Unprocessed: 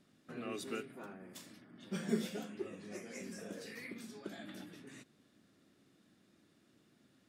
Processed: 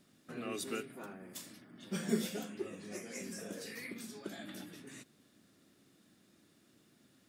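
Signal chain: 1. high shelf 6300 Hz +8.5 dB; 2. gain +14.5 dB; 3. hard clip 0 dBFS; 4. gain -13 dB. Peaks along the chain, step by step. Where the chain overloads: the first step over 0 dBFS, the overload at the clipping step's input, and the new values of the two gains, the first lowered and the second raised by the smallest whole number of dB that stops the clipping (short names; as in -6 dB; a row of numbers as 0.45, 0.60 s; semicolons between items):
-19.5, -5.0, -5.0, -18.0 dBFS; no overload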